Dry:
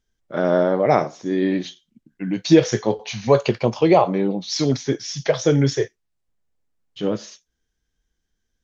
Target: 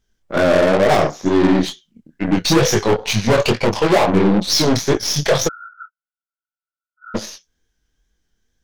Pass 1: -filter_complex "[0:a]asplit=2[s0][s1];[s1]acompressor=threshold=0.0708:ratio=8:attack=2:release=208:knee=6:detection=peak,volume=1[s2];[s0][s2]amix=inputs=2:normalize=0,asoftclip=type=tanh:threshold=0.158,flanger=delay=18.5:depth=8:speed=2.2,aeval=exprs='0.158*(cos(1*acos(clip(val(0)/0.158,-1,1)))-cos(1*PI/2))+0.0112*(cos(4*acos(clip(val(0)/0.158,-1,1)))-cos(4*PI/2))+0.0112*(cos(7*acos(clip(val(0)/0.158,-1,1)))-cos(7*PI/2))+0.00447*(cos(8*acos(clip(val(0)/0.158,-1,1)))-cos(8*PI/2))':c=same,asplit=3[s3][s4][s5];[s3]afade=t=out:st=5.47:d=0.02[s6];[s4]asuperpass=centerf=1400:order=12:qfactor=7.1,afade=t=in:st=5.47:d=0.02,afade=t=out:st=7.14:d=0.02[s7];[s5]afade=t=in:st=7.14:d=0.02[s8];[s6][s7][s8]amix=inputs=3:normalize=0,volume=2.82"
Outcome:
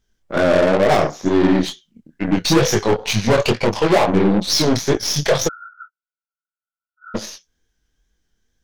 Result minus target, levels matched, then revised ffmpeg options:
compression: peak gain reduction +8.5 dB
-filter_complex "[0:a]asplit=2[s0][s1];[s1]acompressor=threshold=0.211:ratio=8:attack=2:release=208:knee=6:detection=peak,volume=1[s2];[s0][s2]amix=inputs=2:normalize=0,asoftclip=type=tanh:threshold=0.158,flanger=delay=18.5:depth=8:speed=2.2,aeval=exprs='0.158*(cos(1*acos(clip(val(0)/0.158,-1,1)))-cos(1*PI/2))+0.0112*(cos(4*acos(clip(val(0)/0.158,-1,1)))-cos(4*PI/2))+0.0112*(cos(7*acos(clip(val(0)/0.158,-1,1)))-cos(7*PI/2))+0.00447*(cos(8*acos(clip(val(0)/0.158,-1,1)))-cos(8*PI/2))':c=same,asplit=3[s3][s4][s5];[s3]afade=t=out:st=5.47:d=0.02[s6];[s4]asuperpass=centerf=1400:order=12:qfactor=7.1,afade=t=in:st=5.47:d=0.02,afade=t=out:st=7.14:d=0.02[s7];[s5]afade=t=in:st=7.14:d=0.02[s8];[s6][s7][s8]amix=inputs=3:normalize=0,volume=2.82"

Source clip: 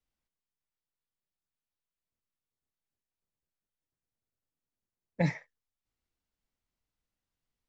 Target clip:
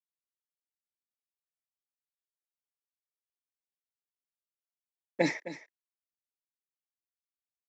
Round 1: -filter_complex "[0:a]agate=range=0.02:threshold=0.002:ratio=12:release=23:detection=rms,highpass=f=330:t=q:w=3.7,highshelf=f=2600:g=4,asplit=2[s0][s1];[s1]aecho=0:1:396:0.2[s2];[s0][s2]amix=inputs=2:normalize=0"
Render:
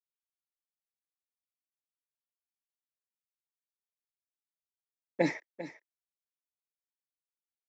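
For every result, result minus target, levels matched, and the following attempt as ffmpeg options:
echo 134 ms late; 4 kHz band -4.5 dB
-filter_complex "[0:a]agate=range=0.02:threshold=0.002:ratio=12:release=23:detection=rms,highpass=f=330:t=q:w=3.7,highshelf=f=2600:g=4,asplit=2[s0][s1];[s1]aecho=0:1:262:0.2[s2];[s0][s2]amix=inputs=2:normalize=0"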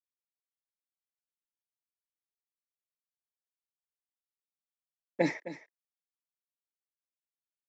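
4 kHz band -4.5 dB
-filter_complex "[0:a]agate=range=0.02:threshold=0.002:ratio=12:release=23:detection=rms,highpass=f=330:t=q:w=3.7,highshelf=f=2600:g=11.5,asplit=2[s0][s1];[s1]aecho=0:1:262:0.2[s2];[s0][s2]amix=inputs=2:normalize=0"

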